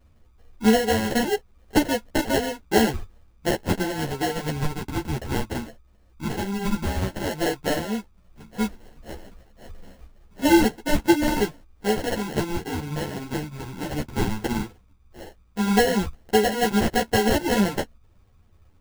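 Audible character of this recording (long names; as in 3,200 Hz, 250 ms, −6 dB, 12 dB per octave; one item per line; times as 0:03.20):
phaser sweep stages 12, 0.13 Hz, lowest notch 470–2,000 Hz
aliases and images of a low sample rate 1,200 Hz, jitter 0%
a shimmering, thickened sound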